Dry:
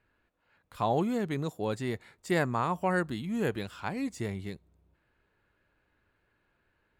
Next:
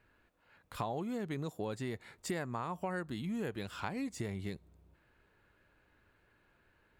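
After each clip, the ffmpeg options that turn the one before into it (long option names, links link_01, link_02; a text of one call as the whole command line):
ffmpeg -i in.wav -af "acompressor=threshold=-39dB:ratio=6,volume=3.5dB" out.wav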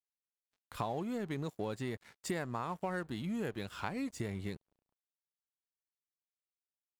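ffmpeg -i in.wav -af "aeval=exprs='sgn(val(0))*max(abs(val(0))-0.00141,0)':channel_layout=same,volume=1dB" out.wav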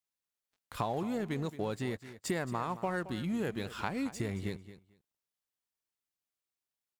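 ffmpeg -i in.wav -af "aecho=1:1:222|444:0.188|0.0301,volume=3dB" out.wav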